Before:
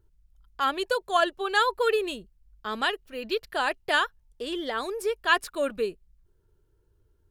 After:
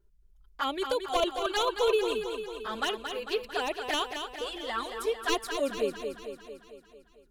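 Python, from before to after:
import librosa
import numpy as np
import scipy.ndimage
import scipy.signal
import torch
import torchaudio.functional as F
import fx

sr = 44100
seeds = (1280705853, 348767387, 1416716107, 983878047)

y = np.minimum(x, 2.0 * 10.0 ** (-17.0 / 20.0) - x)
y = fx.env_flanger(y, sr, rest_ms=5.1, full_db=-22.0)
y = fx.echo_feedback(y, sr, ms=224, feedback_pct=59, wet_db=-7.0)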